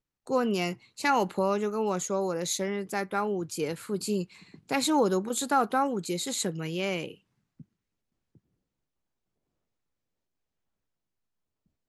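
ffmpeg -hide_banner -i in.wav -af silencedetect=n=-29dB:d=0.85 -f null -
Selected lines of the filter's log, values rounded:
silence_start: 7.06
silence_end: 11.89 | silence_duration: 4.83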